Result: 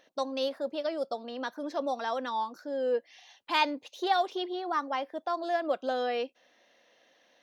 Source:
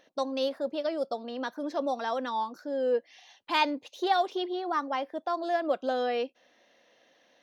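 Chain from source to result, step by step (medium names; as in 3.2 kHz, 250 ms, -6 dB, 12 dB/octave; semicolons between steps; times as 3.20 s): bass shelf 440 Hz -4 dB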